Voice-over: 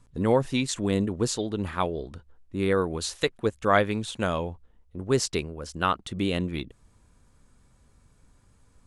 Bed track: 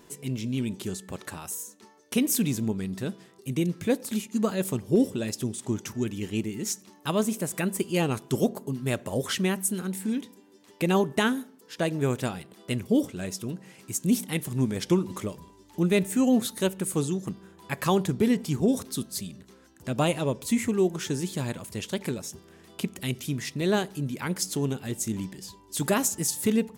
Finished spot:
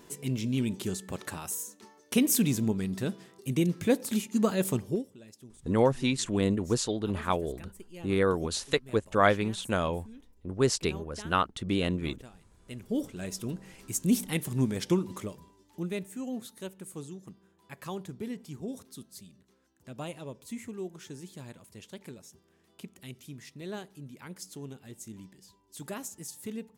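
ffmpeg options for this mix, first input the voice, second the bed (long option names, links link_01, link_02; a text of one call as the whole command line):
ffmpeg -i stem1.wav -i stem2.wav -filter_complex "[0:a]adelay=5500,volume=-1.5dB[link_01];[1:a]volume=19.5dB,afade=type=out:start_time=4.8:duration=0.23:silence=0.0891251,afade=type=in:start_time=12.58:duration=0.9:silence=0.105925,afade=type=out:start_time=14.6:duration=1.51:silence=0.223872[link_02];[link_01][link_02]amix=inputs=2:normalize=0" out.wav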